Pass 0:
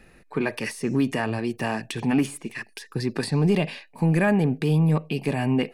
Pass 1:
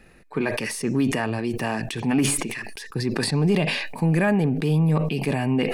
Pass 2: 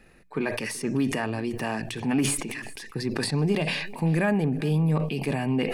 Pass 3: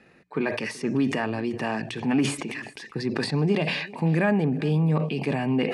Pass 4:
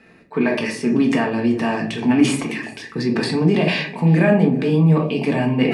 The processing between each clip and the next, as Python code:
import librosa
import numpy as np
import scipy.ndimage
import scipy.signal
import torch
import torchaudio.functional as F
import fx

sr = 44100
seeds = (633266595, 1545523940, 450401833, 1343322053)

y1 = fx.sustainer(x, sr, db_per_s=39.0)
y2 = fx.hum_notches(y1, sr, base_hz=60, count=3)
y2 = y2 + 10.0 ** (-22.0 / 20.0) * np.pad(y2, (int(382 * sr / 1000.0), 0))[:len(y2)]
y2 = fx.end_taper(y2, sr, db_per_s=120.0)
y2 = y2 * 10.0 ** (-3.0 / 20.0)
y3 = scipy.signal.sosfilt(scipy.signal.butter(2, 120.0, 'highpass', fs=sr, output='sos'), y2)
y3 = fx.air_absorb(y3, sr, metres=79.0)
y3 = y3 * 10.0 ** (2.0 / 20.0)
y4 = fx.room_shoebox(y3, sr, seeds[0], volume_m3=240.0, walls='furnished', distance_m=1.6)
y4 = y4 * 10.0 ** (3.5 / 20.0)